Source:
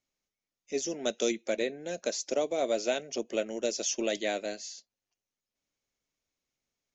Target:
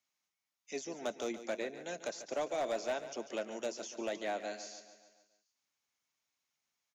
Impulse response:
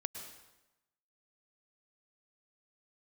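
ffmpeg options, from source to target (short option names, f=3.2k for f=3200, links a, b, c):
-filter_complex "[0:a]highpass=96,lowshelf=f=660:t=q:w=1.5:g=-8,acrossover=split=130|1400[a][b][c];[c]acompressor=threshold=-47dB:ratio=12[d];[a][b][d]amix=inputs=3:normalize=0,asoftclip=type=hard:threshold=-30.5dB,aecho=1:1:143|286|429|572|715|858:0.237|0.13|0.0717|0.0395|0.0217|0.0119,volume=1dB"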